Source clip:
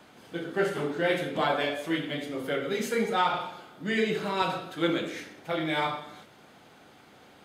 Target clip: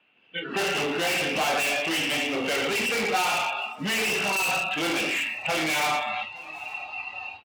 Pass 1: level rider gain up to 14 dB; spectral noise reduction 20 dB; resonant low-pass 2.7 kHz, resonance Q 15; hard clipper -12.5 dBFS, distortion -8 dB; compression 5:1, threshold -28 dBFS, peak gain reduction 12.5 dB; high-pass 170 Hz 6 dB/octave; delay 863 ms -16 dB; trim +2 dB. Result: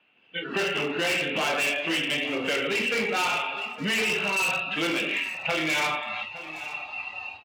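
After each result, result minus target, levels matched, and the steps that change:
echo-to-direct +9 dB; hard clipper: distortion -5 dB; 1 kHz band -2.5 dB
change: delay 863 ms -25 dB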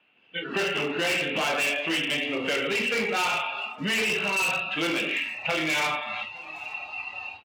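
hard clipper: distortion -5 dB; 1 kHz band -2.5 dB
change: hard clipper -20.5 dBFS, distortion -3 dB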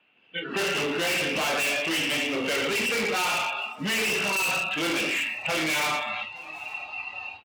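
1 kHz band -2.5 dB
add after high-pass: dynamic bell 760 Hz, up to +8 dB, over -51 dBFS, Q 5.7

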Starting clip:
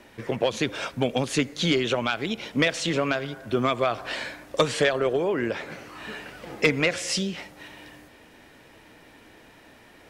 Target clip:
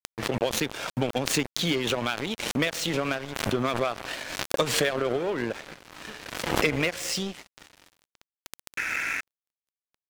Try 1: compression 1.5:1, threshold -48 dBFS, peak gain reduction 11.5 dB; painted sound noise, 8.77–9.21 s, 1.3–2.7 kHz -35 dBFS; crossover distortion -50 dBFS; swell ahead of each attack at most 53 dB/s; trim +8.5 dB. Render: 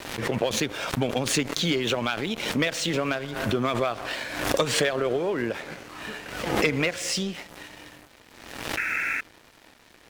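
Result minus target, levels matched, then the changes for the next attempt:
crossover distortion: distortion -7 dB
change: crossover distortion -42 dBFS

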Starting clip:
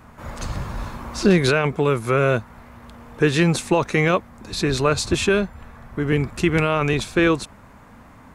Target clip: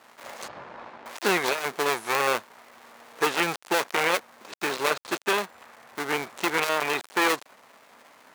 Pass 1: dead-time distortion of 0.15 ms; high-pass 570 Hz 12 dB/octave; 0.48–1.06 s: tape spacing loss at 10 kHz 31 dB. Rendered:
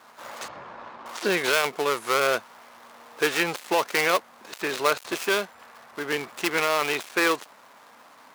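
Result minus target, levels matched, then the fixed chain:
dead-time distortion: distortion -7 dB
dead-time distortion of 0.42 ms; high-pass 570 Hz 12 dB/octave; 0.48–1.06 s: tape spacing loss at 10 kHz 31 dB

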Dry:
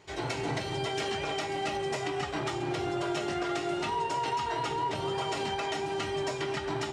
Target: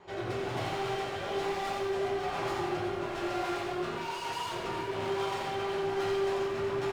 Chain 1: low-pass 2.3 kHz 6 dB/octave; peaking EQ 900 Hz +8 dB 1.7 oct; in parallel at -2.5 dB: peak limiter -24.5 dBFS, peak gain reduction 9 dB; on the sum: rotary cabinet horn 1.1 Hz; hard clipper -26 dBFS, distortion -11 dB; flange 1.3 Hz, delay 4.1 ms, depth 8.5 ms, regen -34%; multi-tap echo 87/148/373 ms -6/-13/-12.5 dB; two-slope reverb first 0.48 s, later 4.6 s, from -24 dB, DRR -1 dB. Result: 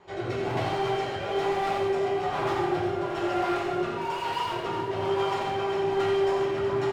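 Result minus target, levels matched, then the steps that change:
hard clipper: distortion -6 dB
change: hard clipper -34 dBFS, distortion -5 dB

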